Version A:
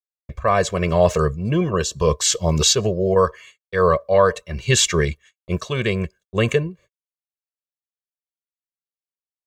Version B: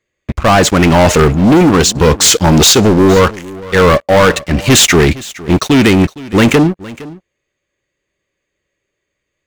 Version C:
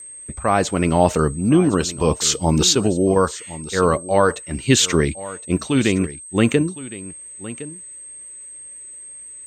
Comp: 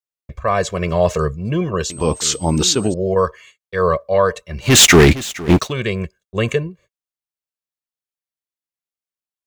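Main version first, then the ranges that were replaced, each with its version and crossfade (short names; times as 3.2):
A
1.9–2.94 from C
4.72–5.61 from B, crossfade 0.24 s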